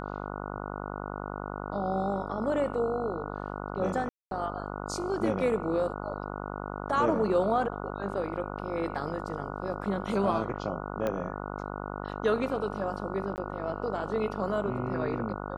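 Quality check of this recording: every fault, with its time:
buzz 50 Hz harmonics 29 -37 dBFS
4.09–4.31 gap 0.222 s
11.07 pop -18 dBFS
13.36–13.38 gap 19 ms

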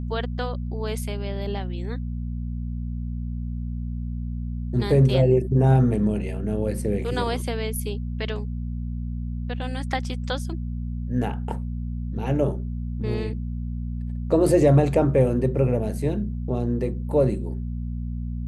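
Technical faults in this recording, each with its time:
hum 60 Hz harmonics 4 -29 dBFS

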